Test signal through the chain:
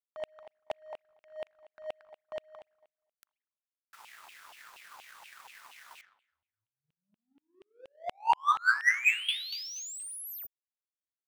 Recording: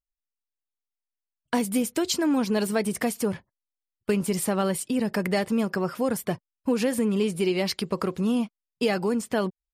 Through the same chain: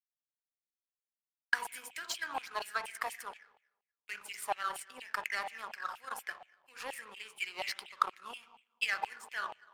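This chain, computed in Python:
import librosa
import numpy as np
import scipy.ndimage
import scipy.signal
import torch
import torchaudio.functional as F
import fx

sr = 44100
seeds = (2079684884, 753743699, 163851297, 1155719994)

y = fx.rev_spring(x, sr, rt60_s=1.1, pass_ms=(39, 58), chirp_ms=65, drr_db=6.0)
y = fx.filter_lfo_highpass(y, sr, shape='saw_down', hz=4.2, low_hz=790.0, high_hz=2900.0, q=6.2)
y = fx.power_curve(y, sr, exponent=1.4)
y = F.gain(torch.from_numpy(y), -6.0).numpy()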